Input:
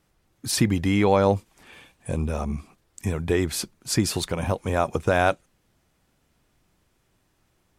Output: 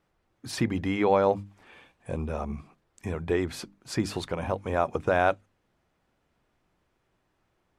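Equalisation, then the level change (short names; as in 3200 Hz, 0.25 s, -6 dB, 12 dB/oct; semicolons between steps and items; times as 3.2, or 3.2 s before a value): LPF 1600 Hz 6 dB/oct; low shelf 320 Hz -7 dB; notches 50/100/150/200/250/300 Hz; 0.0 dB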